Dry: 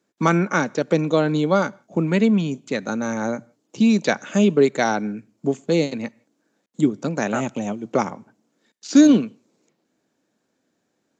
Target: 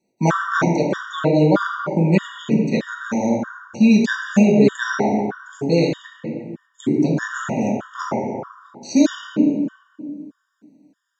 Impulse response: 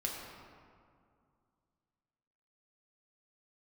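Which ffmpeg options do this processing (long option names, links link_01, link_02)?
-filter_complex "[1:a]atrim=start_sample=2205,asetrate=52920,aresample=44100[link_01];[0:a][link_01]afir=irnorm=-1:irlink=0,afftfilt=real='re*gt(sin(2*PI*1.6*pts/sr)*(1-2*mod(floor(b*sr/1024/950),2)),0)':imag='im*gt(sin(2*PI*1.6*pts/sr)*(1-2*mod(floor(b*sr/1024/950),2)),0)':win_size=1024:overlap=0.75,volume=3.5dB"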